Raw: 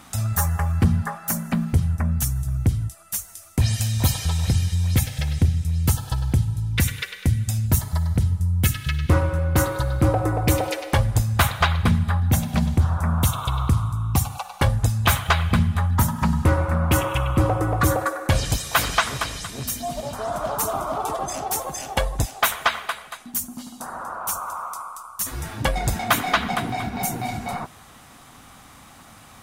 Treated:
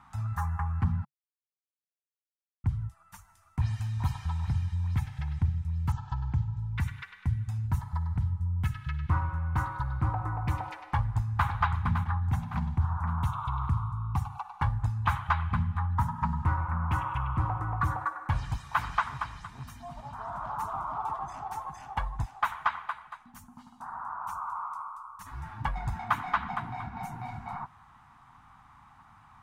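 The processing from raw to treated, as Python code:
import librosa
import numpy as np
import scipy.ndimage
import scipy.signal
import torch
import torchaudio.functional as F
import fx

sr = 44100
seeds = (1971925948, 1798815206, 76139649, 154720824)

y = fx.steep_lowpass(x, sr, hz=7600.0, slope=72, at=(5.92, 6.59))
y = fx.echo_throw(y, sr, start_s=10.85, length_s=0.63, ms=560, feedback_pct=45, wet_db=-8.5)
y = fx.edit(y, sr, fx.silence(start_s=1.05, length_s=1.59), tone=tone)
y = fx.curve_eq(y, sr, hz=(140.0, 550.0, 900.0, 3400.0, 13000.0), db=(0, -19, 7, -12, -23))
y = y * 10.0 ** (-8.5 / 20.0)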